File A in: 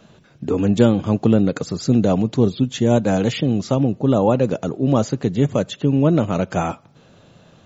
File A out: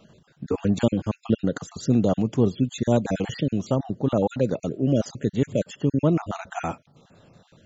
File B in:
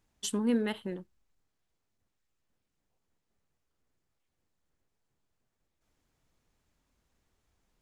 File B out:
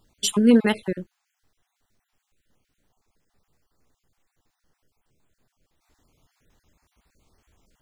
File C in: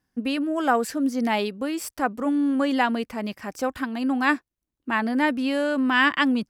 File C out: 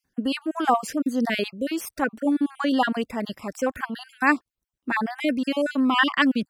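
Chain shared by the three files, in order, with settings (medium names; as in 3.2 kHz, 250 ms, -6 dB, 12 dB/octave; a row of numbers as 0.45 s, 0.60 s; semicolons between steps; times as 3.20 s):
random holes in the spectrogram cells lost 37%; peak normalisation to -6 dBFS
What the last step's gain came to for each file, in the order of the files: -4.0 dB, +12.5 dB, +2.0 dB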